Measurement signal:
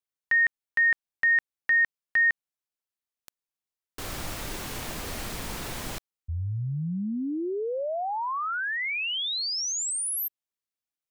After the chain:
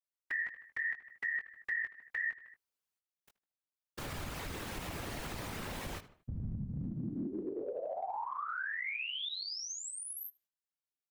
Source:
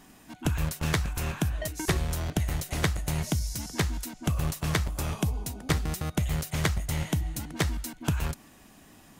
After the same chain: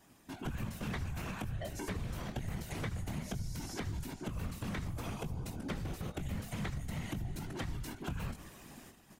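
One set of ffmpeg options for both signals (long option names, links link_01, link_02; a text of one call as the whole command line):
ffmpeg -i in.wav -filter_complex "[0:a]asplit=2[link_01][link_02];[link_02]adelay=19,volume=-6.5dB[link_03];[link_01][link_03]amix=inputs=2:normalize=0,acrossover=split=3500[link_04][link_05];[link_05]acompressor=threshold=-42dB:ratio=4:attack=1:release=60[link_06];[link_04][link_06]amix=inputs=2:normalize=0,asplit=2[link_07][link_08];[link_08]adelay=77,lowpass=frequency=3600:poles=1,volume=-19dB,asplit=2[link_09][link_10];[link_10]adelay=77,lowpass=frequency=3600:poles=1,volume=0.4,asplit=2[link_11][link_12];[link_12]adelay=77,lowpass=frequency=3600:poles=1,volume=0.4[link_13];[link_09][link_11][link_13]amix=inputs=3:normalize=0[link_14];[link_07][link_14]amix=inputs=2:normalize=0,agate=range=-10dB:threshold=-48dB:ratio=16:release=390:detection=rms,afftfilt=real='hypot(re,im)*cos(2*PI*random(0))':imag='hypot(re,im)*sin(2*PI*random(1))':win_size=512:overlap=0.75,acompressor=threshold=-43dB:ratio=3:attack=0.88:release=195:detection=peak,volume=6dB" out.wav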